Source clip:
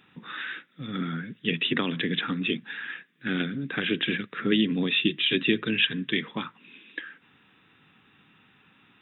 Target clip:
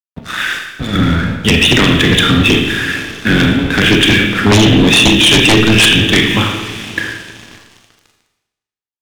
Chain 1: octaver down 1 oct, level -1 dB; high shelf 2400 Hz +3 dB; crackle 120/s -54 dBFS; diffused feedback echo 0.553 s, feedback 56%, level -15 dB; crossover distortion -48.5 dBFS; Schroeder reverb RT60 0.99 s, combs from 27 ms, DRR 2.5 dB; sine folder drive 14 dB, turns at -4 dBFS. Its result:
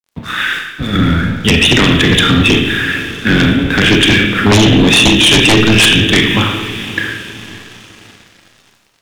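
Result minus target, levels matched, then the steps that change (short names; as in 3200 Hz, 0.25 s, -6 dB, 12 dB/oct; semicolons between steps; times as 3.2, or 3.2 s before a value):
crossover distortion: distortion -6 dB
change: crossover distortion -42 dBFS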